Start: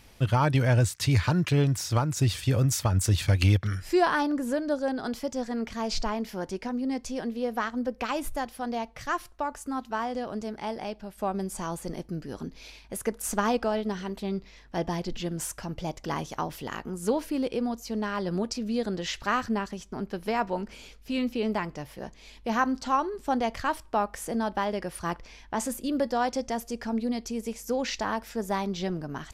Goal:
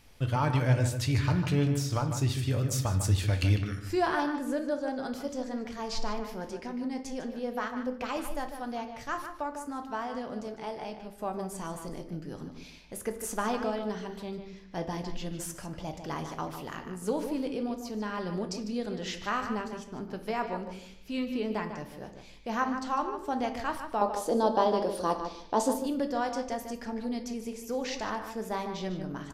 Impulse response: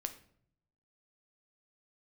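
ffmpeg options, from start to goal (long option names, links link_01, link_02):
-filter_complex "[0:a]asettb=1/sr,asplit=3[link_01][link_02][link_03];[link_01]atrim=end=24.014[link_04];[link_02]atrim=start=24.01:end=25.75,asetpts=PTS-STARTPTS,afade=type=in:duration=0.004:curve=qsin,afade=type=out:start_time=1.736:duration=0.004:curve=qsin,equalizer=frequency=125:width_type=o:width=1:gain=-11,equalizer=frequency=250:width_type=o:width=1:gain=8,equalizer=frequency=500:width_type=o:width=1:gain=10,equalizer=frequency=1000:width_type=o:width=1:gain=7,equalizer=frequency=2000:width_type=o:width=1:gain=-10,equalizer=frequency=4000:width_type=o:width=1:gain=11[link_05];[link_03]atrim=start=25.746[link_06];[link_04][link_05]acrossfade=duration=0.004:curve1=hsin:curve2=qsin[link_07];[link_07][link_06]acrossfade=duration=0.004:curve1=qsin:curve2=hsin,asplit=2[link_08][link_09];[link_09]adelay=150,lowpass=frequency=3900:poles=1,volume=-8dB,asplit=2[link_10][link_11];[link_11]adelay=150,lowpass=frequency=3900:poles=1,volume=0.16,asplit=2[link_12][link_13];[link_13]adelay=150,lowpass=frequency=3900:poles=1,volume=0.16[link_14];[link_08][link_10][link_12][link_14]amix=inputs=4:normalize=0[link_15];[1:a]atrim=start_sample=2205,afade=type=out:start_time=0.4:duration=0.01,atrim=end_sample=18081[link_16];[link_15][link_16]afir=irnorm=-1:irlink=0,volume=-3.5dB"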